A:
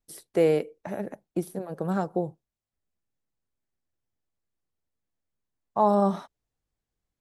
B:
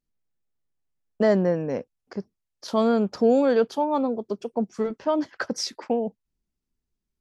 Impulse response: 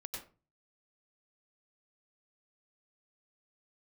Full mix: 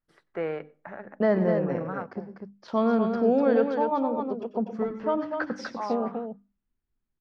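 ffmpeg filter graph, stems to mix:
-filter_complex "[0:a]equalizer=frequency=1400:width_type=o:width=1.6:gain=14,volume=-9.5dB,afade=type=out:start_time=1.87:duration=0.23:silence=0.398107,asplit=2[link_01][link_02];[link_02]volume=-20.5dB[link_03];[1:a]volume=-3dB,asplit=3[link_04][link_05][link_06];[link_05]volume=-4dB[link_07];[link_06]volume=-3.5dB[link_08];[2:a]atrim=start_sample=2205[link_09];[link_03][link_07]amix=inputs=2:normalize=0[link_10];[link_10][link_09]afir=irnorm=-1:irlink=0[link_11];[link_08]aecho=0:1:247:1[link_12];[link_01][link_04][link_11][link_12]amix=inputs=4:normalize=0,lowpass=2200,equalizer=frequency=440:width_type=o:width=1.5:gain=-3.5,bandreject=frequency=50:width_type=h:width=6,bandreject=frequency=100:width_type=h:width=6,bandreject=frequency=150:width_type=h:width=6,bandreject=frequency=200:width_type=h:width=6,bandreject=frequency=250:width_type=h:width=6,bandreject=frequency=300:width_type=h:width=6"

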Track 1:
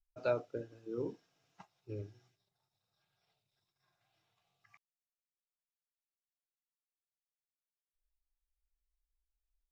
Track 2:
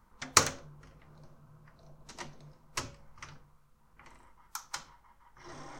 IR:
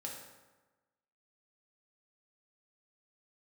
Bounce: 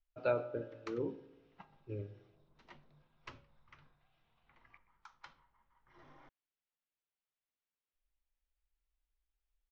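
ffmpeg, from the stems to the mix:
-filter_complex "[0:a]volume=-1dB,asplit=4[link_01][link_02][link_03][link_04];[link_02]volume=-9dB[link_05];[link_03]volume=-20dB[link_06];[1:a]adelay=500,volume=-13.5dB[link_07];[link_04]apad=whole_len=277391[link_08];[link_07][link_08]sidechaincompress=threshold=-49dB:ratio=10:attack=22:release=806[link_09];[2:a]atrim=start_sample=2205[link_10];[link_05][link_10]afir=irnorm=-1:irlink=0[link_11];[link_06]aecho=0:1:125:1[link_12];[link_01][link_09][link_11][link_12]amix=inputs=4:normalize=0,crystalizer=i=1.5:c=0,lowpass=frequency=3300:width=0.5412,lowpass=frequency=3300:width=1.3066"

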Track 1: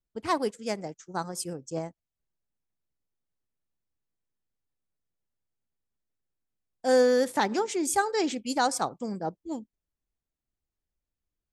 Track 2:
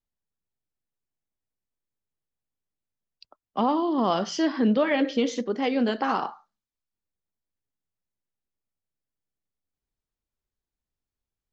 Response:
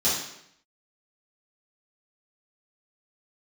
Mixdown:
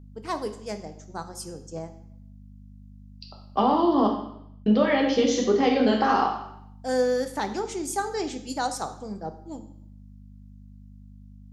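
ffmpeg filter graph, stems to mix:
-filter_complex "[0:a]aeval=exprs='val(0)+0.00891*(sin(2*PI*50*n/s)+sin(2*PI*2*50*n/s)/2+sin(2*PI*3*50*n/s)/3+sin(2*PI*4*50*n/s)/4+sin(2*PI*5*50*n/s)/5)':channel_layout=same,volume=-4.5dB,asplit=2[link_01][link_02];[link_02]volume=-20dB[link_03];[1:a]lowshelf=frequency=140:gain=-11,acompressor=threshold=-24dB:ratio=6,volume=2.5dB,asplit=3[link_04][link_05][link_06];[link_04]atrim=end=4.07,asetpts=PTS-STARTPTS,afade=type=out:start_time=4.066:duration=0.004:curve=hsin[link_07];[link_05]atrim=start=4.07:end=4.66,asetpts=PTS-STARTPTS,volume=0[link_08];[link_06]atrim=start=4.66,asetpts=PTS-STARTPTS,afade=type=in:duration=0.004:curve=hsin[link_09];[link_07][link_08][link_09]concat=n=3:v=0:a=1,asplit=2[link_10][link_11];[link_11]volume=-11.5dB[link_12];[2:a]atrim=start_sample=2205[link_13];[link_03][link_12]amix=inputs=2:normalize=0[link_14];[link_14][link_13]afir=irnorm=-1:irlink=0[link_15];[link_01][link_10][link_15]amix=inputs=3:normalize=0"

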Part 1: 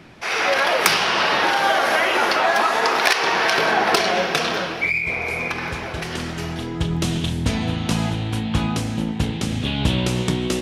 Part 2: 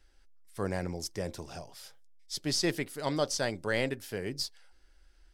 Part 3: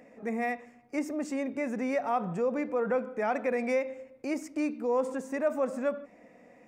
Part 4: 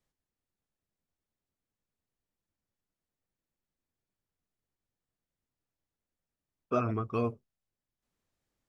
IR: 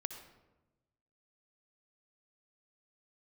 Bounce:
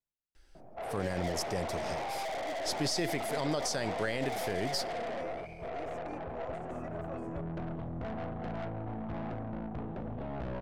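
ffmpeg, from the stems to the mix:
-filter_complex "[0:a]lowpass=frequency=670:width_type=q:width=4.9,aeval=exprs='(tanh(17.8*val(0)+0.45)-tanh(0.45))/17.8':channel_layout=same,adelay=550,volume=-10.5dB[link_01];[1:a]adelay=350,volume=1.5dB,asplit=2[link_02][link_03];[link_03]volume=-16.5dB[link_04];[2:a]adelay=1500,volume=-18dB[link_05];[3:a]alimiter=level_in=1.5dB:limit=-24dB:level=0:latency=1,volume=-1.5dB,volume=-15.5dB[link_06];[4:a]atrim=start_sample=2205[link_07];[link_04][link_07]afir=irnorm=-1:irlink=0[link_08];[link_01][link_02][link_05][link_06][link_08]amix=inputs=5:normalize=0,alimiter=limit=-22dB:level=0:latency=1:release=40"

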